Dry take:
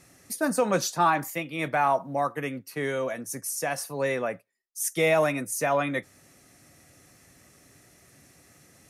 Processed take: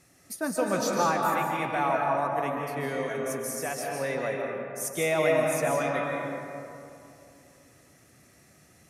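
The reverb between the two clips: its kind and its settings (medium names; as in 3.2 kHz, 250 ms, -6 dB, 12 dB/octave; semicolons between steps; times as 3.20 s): algorithmic reverb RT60 2.7 s, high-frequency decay 0.45×, pre-delay 110 ms, DRR -1 dB; trim -4.5 dB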